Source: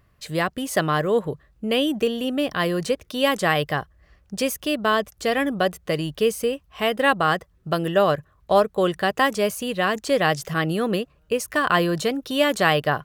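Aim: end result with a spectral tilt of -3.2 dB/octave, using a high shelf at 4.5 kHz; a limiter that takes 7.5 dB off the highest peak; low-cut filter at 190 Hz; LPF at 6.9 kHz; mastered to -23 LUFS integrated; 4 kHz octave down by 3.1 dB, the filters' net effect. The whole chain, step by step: high-pass 190 Hz; low-pass 6.9 kHz; peaking EQ 4 kHz -6.5 dB; treble shelf 4.5 kHz +4 dB; trim +2 dB; peak limiter -9 dBFS

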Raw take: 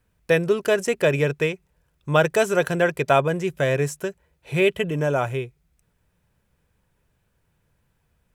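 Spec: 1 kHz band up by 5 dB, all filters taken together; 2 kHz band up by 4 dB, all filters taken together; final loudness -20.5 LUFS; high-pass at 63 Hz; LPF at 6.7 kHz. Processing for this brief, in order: high-pass 63 Hz; low-pass 6.7 kHz; peaking EQ 1 kHz +6.5 dB; peaking EQ 2 kHz +3 dB; trim -0.5 dB

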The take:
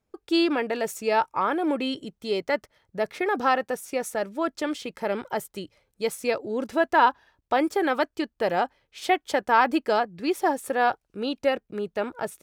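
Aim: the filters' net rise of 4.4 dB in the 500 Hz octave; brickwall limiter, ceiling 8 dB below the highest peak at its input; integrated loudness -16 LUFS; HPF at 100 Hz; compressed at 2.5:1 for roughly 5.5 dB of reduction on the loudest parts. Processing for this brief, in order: high-pass 100 Hz; peaking EQ 500 Hz +5.5 dB; compression 2.5:1, threshold -21 dBFS; trim +12.5 dB; peak limiter -4.5 dBFS

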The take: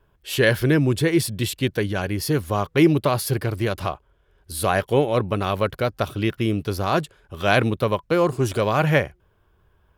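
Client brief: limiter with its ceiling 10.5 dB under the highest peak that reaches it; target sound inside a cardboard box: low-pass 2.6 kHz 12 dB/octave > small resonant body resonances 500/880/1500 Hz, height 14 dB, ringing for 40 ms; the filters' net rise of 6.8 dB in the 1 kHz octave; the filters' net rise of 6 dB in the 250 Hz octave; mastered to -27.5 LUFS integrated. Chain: peaking EQ 250 Hz +8 dB; peaking EQ 1 kHz +8.5 dB; peak limiter -8.5 dBFS; low-pass 2.6 kHz 12 dB/octave; small resonant body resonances 500/880/1500 Hz, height 14 dB, ringing for 40 ms; trim -12 dB

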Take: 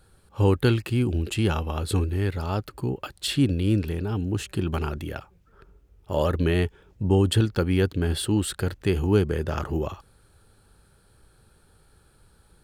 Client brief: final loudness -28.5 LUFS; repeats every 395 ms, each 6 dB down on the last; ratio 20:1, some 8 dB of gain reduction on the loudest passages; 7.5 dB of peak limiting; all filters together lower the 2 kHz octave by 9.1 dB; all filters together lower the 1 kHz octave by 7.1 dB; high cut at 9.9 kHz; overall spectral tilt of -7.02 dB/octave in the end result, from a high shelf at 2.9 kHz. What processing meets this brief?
low-pass 9.9 kHz; peaking EQ 1 kHz -6.5 dB; peaking EQ 2 kHz -9 dB; treble shelf 2.9 kHz -4 dB; compression 20:1, threshold -23 dBFS; peak limiter -23.5 dBFS; feedback delay 395 ms, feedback 50%, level -6 dB; trim +4 dB

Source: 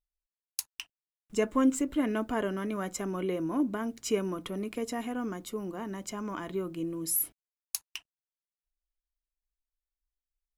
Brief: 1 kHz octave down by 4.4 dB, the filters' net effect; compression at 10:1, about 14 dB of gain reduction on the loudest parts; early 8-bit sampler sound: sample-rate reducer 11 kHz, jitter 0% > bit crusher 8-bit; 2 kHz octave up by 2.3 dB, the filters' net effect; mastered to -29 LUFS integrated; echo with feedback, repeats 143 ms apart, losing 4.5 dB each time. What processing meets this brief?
peaking EQ 1 kHz -7 dB; peaking EQ 2 kHz +5.5 dB; compression 10:1, threshold -34 dBFS; feedback delay 143 ms, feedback 60%, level -4.5 dB; sample-rate reducer 11 kHz, jitter 0%; bit crusher 8-bit; trim +8.5 dB

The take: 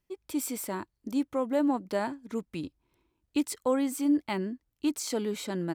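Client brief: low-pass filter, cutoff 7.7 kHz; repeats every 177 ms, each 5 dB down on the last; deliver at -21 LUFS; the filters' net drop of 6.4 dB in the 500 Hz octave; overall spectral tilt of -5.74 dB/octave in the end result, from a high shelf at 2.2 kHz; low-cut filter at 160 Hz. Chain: high-pass 160 Hz; low-pass 7.7 kHz; peaking EQ 500 Hz -7 dB; treble shelf 2.2 kHz -9 dB; feedback delay 177 ms, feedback 56%, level -5 dB; trim +12 dB

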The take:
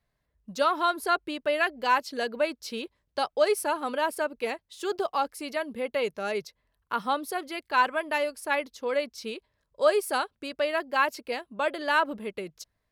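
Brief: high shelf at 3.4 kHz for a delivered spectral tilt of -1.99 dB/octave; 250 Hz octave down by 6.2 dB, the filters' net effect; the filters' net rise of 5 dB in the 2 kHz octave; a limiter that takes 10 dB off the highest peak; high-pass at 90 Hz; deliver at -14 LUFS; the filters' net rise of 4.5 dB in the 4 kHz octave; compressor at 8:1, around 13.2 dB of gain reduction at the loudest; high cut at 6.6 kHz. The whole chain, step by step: high-pass 90 Hz; low-pass 6.6 kHz; peaking EQ 250 Hz -8.5 dB; peaking EQ 2 kHz +7 dB; treble shelf 3.4 kHz -6.5 dB; peaking EQ 4 kHz +8 dB; compression 8:1, threshold -30 dBFS; trim +24.5 dB; peak limiter -2.5 dBFS

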